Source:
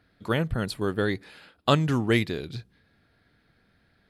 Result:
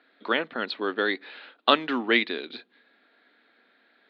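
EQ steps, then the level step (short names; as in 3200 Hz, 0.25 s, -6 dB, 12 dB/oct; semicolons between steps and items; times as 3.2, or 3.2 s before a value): Chebyshev band-pass 240–4000 Hz, order 4; dynamic EQ 510 Hz, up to -4 dB, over -37 dBFS, Q 0.81; low shelf 300 Hz -10 dB; +6.5 dB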